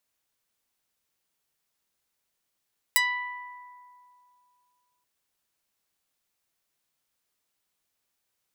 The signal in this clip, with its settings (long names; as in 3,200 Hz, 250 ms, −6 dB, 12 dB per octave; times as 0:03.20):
Karplus-Strong string B5, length 2.08 s, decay 2.58 s, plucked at 0.22, medium